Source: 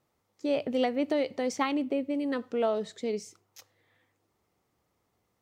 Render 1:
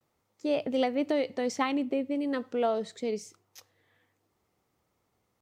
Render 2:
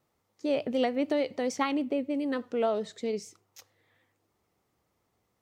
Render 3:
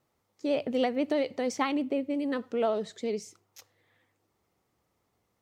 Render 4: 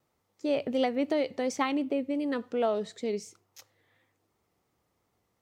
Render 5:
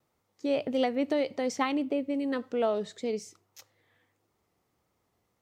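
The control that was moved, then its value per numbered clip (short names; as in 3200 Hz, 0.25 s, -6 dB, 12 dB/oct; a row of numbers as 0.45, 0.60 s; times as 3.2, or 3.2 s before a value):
vibrato, rate: 0.45, 6.8, 14, 2.8, 1.7 Hz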